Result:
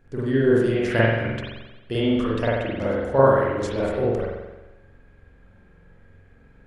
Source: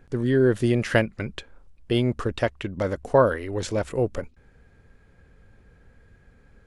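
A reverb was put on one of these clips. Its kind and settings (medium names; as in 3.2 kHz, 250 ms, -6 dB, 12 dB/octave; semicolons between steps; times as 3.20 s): spring tank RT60 1.1 s, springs 44 ms, chirp 55 ms, DRR -7.5 dB; trim -5.5 dB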